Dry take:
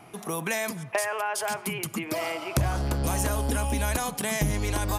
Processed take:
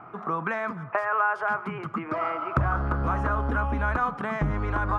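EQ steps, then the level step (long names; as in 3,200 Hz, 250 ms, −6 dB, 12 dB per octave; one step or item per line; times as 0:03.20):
low-pass with resonance 1,300 Hz, resonance Q 5.2
dynamic equaliser 630 Hz, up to −3 dB, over −35 dBFS, Q 0.76
0.0 dB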